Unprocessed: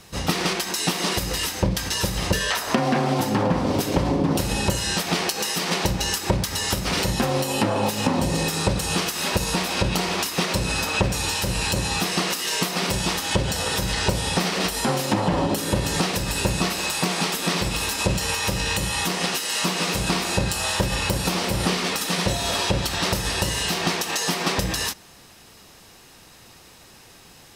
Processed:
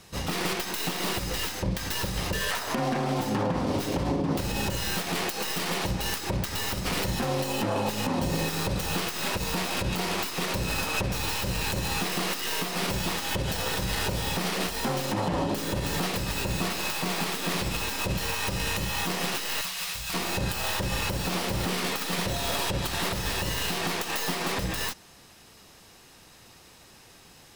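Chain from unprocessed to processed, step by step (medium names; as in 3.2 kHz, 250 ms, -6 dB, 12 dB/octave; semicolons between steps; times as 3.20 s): tracing distortion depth 0.29 ms; 19.61–20.14 s: amplifier tone stack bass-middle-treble 10-0-10; peak limiter -14 dBFS, peak gain reduction 6.5 dB; trim -4 dB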